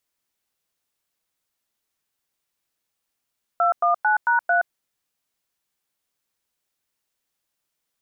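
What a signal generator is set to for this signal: DTMF "219#3", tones 0.122 s, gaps 0.101 s, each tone -18.5 dBFS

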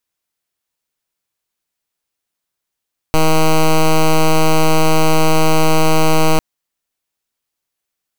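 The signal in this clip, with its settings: pulse 158 Hz, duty 9% -10 dBFS 3.25 s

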